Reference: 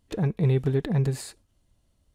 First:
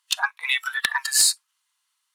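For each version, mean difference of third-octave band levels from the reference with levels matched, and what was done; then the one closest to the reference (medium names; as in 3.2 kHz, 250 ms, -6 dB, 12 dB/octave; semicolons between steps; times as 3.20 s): 16.5 dB: spectral noise reduction 19 dB; steep high-pass 980 Hz 48 dB/octave; sine folder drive 13 dB, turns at -17 dBFS; trim +7.5 dB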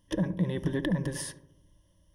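6.0 dB: rippled EQ curve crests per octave 1.2, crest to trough 16 dB; compression 4:1, threshold -25 dBFS, peak gain reduction 8.5 dB; filtered feedback delay 72 ms, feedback 63%, low-pass 1 kHz, level -11.5 dB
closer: second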